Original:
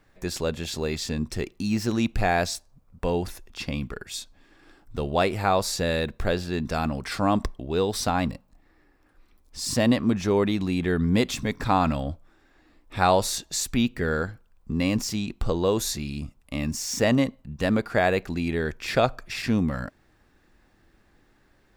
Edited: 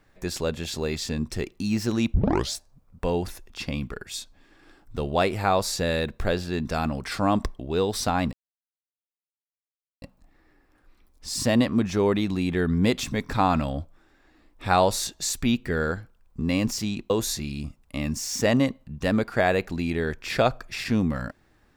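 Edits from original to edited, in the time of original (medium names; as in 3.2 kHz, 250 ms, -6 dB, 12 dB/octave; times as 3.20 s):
2.14 s: tape start 0.40 s
8.33 s: insert silence 1.69 s
15.41–15.68 s: delete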